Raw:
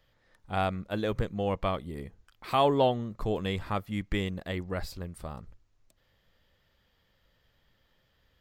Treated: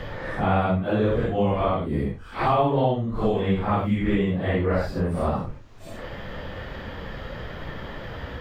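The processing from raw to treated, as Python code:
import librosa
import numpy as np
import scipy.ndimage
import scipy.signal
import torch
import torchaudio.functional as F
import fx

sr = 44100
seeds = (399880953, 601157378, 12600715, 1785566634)

y = fx.phase_scramble(x, sr, seeds[0], window_ms=200)
y = fx.lowpass(y, sr, hz=1400.0, slope=6)
y = fx.band_squash(y, sr, depth_pct=100)
y = F.gain(torch.from_numpy(y), 8.5).numpy()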